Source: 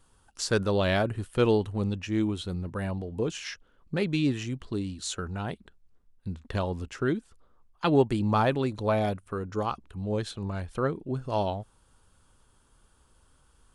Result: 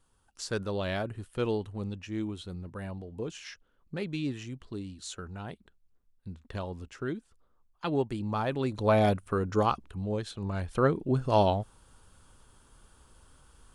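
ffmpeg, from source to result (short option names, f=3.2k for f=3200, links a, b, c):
-af "volume=13dB,afade=t=in:st=8.45:d=0.65:silence=0.281838,afade=t=out:st=9.66:d=0.57:silence=0.375837,afade=t=in:st=10.23:d=0.78:silence=0.354813"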